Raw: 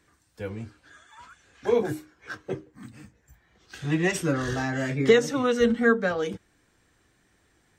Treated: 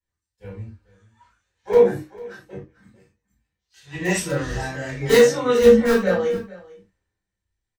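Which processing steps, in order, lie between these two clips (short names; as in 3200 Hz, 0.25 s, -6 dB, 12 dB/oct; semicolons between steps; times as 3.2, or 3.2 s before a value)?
2.92–3.95 low shelf 450 Hz -8 dB; in parallel at -10.5 dB: wrapped overs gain 12.5 dB; on the sum: doubler 21 ms -11.5 dB; echo 0.447 s -13 dB; reverb, pre-delay 3 ms, DRR -6.5 dB; three-band expander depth 70%; gain -13 dB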